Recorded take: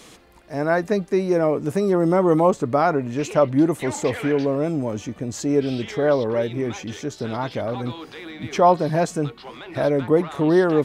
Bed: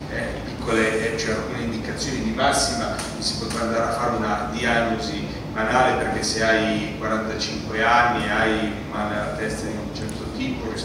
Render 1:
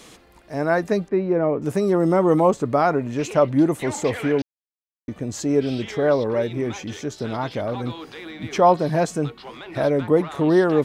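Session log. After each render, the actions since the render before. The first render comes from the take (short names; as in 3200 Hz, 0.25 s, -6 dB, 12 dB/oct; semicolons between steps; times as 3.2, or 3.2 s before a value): 1.08–1.62 air absorption 420 m; 4.42–5.08 mute; 6.08–6.5 notch 3100 Hz, Q 9.5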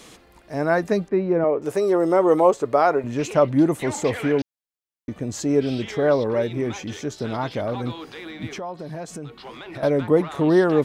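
1.44–3.04 resonant low shelf 300 Hz -8.5 dB, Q 1.5; 8.48–9.83 compressor 4:1, threshold -32 dBFS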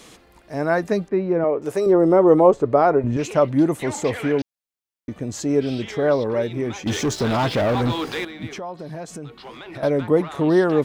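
1.86–3.17 tilt -3 dB/oct; 6.86–8.25 sample leveller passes 3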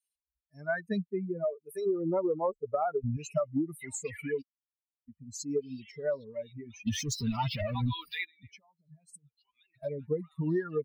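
per-bin expansion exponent 3; compressor 16:1, threshold -26 dBFS, peak gain reduction 15.5 dB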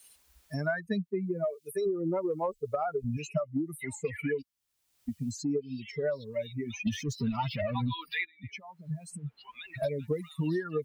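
three-band squash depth 100%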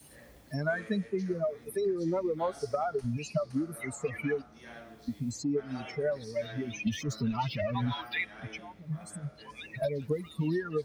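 add bed -28 dB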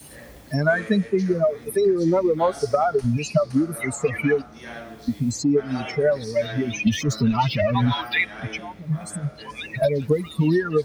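gain +11 dB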